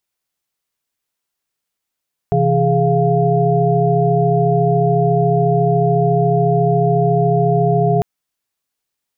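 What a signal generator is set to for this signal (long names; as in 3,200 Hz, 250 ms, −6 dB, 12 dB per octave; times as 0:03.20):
held notes C3/E3/G#4/F5 sine, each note −17 dBFS 5.70 s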